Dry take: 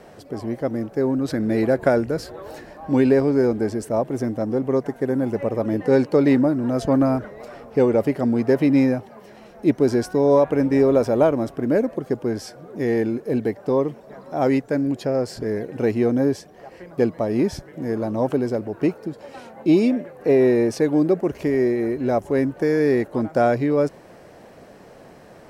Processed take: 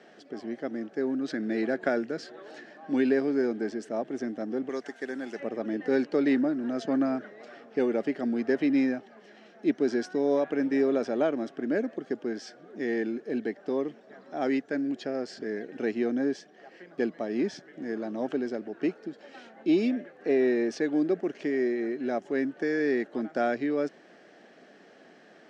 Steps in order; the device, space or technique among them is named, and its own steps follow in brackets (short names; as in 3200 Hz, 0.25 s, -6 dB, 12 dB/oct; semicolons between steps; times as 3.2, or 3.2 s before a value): television speaker (speaker cabinet 210–6600 Hz, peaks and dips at 520 Hz -6 dB, 980 Hz -10 dB, 1700 Hz +6 dB, 3200 Hz +5 dB); 4.69–5.4 tilt +3.5 dB/oct; gain -6.5 dB